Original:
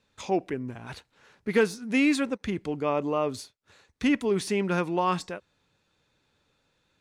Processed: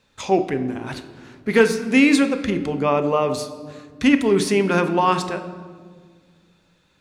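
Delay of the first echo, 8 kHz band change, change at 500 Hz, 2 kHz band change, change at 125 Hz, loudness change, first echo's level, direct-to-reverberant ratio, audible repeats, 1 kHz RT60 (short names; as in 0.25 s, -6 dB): none, +8.5 dB, +8.0 dB, +8.5 dB, +7.0 dB, +8.0 dB, none, 9.0 dB, none, 1.5 s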